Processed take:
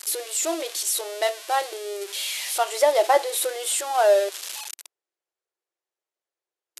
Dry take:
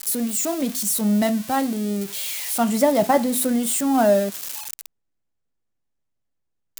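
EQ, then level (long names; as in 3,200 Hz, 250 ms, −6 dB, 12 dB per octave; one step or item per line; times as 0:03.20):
dynamic equaliser 3,400 Hz, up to +5 dB, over −42 dBFS, Q 1.1
linear-phase brick-wall band-pass 320–13,000 Hz
high-shelf EQ 9,700 Hz −4.5 dB
0.0 dB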